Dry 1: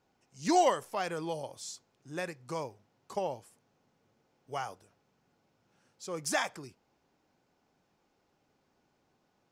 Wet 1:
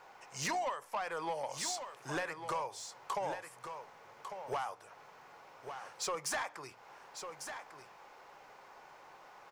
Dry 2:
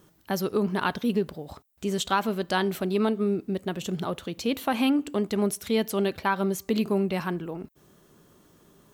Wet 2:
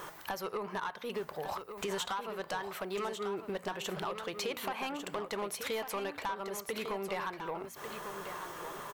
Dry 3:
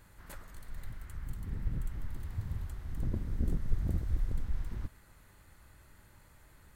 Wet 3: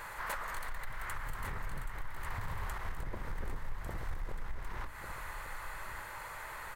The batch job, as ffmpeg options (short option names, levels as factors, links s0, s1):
-filter_complex "[0:a]equalizer=f=97:t=o:w=2.9:g=-14.5,aeval=exprs='0.266*(cos(1*acos(clip(val(0)/0.266,-1,1)))-cos(1*PI/2))+0.0188*(cos(5*acos(clip(val(0)/0.266,-1,1)))-cos(5*PI/2))':c=same,equalizer=f=125:t=o:w=1:g=6,equalizer=f=250:t=o:w=1:g=-6,equalizer=f=500:t=o:w=1:g=5,equalizer=f=1000:t=o:w=1:g=11,equalizer=f=2000:t=o:w=1:g=7,acompressor=threshold=0.00794:ratio=8,bandreject=f=59.09:t=h:w=4,bandreject=f=118.18:t=h:w=4,bandreject=f=177.27:t=h:w=4,bandreject=f=236.36:t=h:w=4,bandreject=f=295.45:t=h:w=4,asoftclip=type=tanh:threshold=0.0112,asplit=2[s0][s1];[s1]aecho=0:1:1149:0.376[s2];[s0][s2]amix=inputs=2:normalize=0,volume=2.99"